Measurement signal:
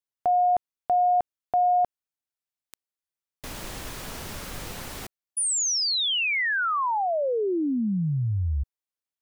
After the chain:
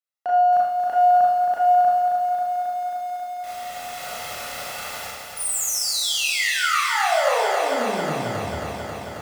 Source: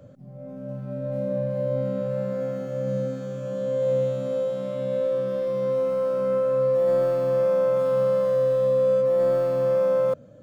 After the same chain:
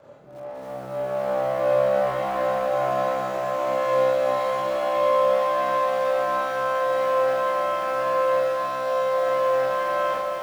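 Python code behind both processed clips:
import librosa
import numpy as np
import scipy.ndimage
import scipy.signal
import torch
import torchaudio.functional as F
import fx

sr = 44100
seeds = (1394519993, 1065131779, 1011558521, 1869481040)

y = fx.lower_of_two(x, sr, delay_ms=1.5)
y = fx.highpass(y, sr, hz=1200.0, slope=6)
y = fx.high_shelf(y, sr, hz=2400.0, db=-9.0)
y = fx.rider(y, sr, range_db=3, speed_s=0.5)
y = fx.echo_feedback(y, sr, ms=241, feedback_pct=21, wet_db=-18)
y = fx.rev_schroeder(y, sr, rt60_s=0.71, comb_ms=26, drr_db=-4.5)
y = fx.echo_crushed(y, sr, ms=270, feedback_pct=80, bits=9, wet_db=-6)
y = F.gain(torch.from_numpy(y), 4.5).numpy()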